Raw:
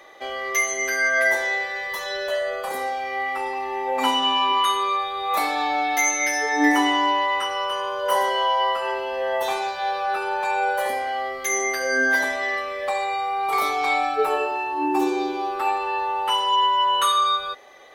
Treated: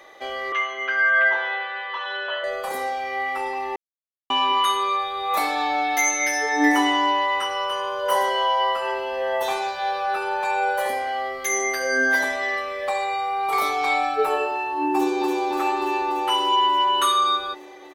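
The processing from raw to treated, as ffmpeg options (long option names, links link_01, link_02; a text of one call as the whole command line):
ffmpeg -i in.wav -filter_complex "[0:a]asettb=1/sr,asplit=3[link_01][link_02][link_03];[link_01]atrim=end=0.524[link_04];[link_02]atrim=start=0.52:end=2.44,asetpts=PTS-STARTPTS,afade=type=in:duration=0.004:curve=qsin,afade=type=out:start_time=1.916:duration=0.004:curve=qsin,highpass=frequency=320:width=0.5412,highpass=frequency=320:width=1.3066,equalizer=frequency=360:width_type=q:width=4:gain=-7,equalizer=frequency=600:width_type=q:width=4:gain=-8,equalizer=frequency=980:width_type=q:width=4:gain=6,equalizer=frequency=1400:width_type=q:width=4:gain=9,equalizer=frequency=2000:width_type=q:width=4:gain=-6,equalizer=frequency=3000:width_type=q:width=4:gain=9,lowpass=frequency=3100:width=0.5412,lowpass=frequency=3100:width=1.3066[link_05];[link_03]atrim=start=2.436[link_06];[link_04][link_05]acrossfade=duration=0.004:curve1=hsin:curve2=qsin[link_07];[link_07][link_06]acrossfade=duration=0.004:curve1=qsin:curve2=hsin,asplit=2[link_08][link_09];[link_09]afade=type=in:start_time=14.92:duration=0.01,afade=type=out:start_time=15.43:duration=0.01,aecho=0:1:290|580|870|1160|1450|1740|2030|2320|2610|2900|3190|3480:0.707946|0.530959|0.39822|0.298665|0.223998|0.167999|0.125999|0.0944994|0.0708745|0.0531559|0.0398669|0.0299002[link_10];[link_08][link_10]amix=inputs=2:normalize=0,asplit=3[link_11][link_12][link_13];[link_11]atrim=end=3.76,asetpts=PTS-STARTPTS,afade=type=out:start_time=3.756:duration=0.004:curve=hsin[link_14];[link_12]atrim=start=3.76:end=4.3,asetpts=PTS-STARTPTS,volume=0[link_15];[link_13]atrim=start=4.3,asetpts=PTS-STARTPTS,afade=type=in:duration=0.004:curve=hsin[link_16];[link_14][link_15][link_16]concat=n=3:v=0:a=1" out.wav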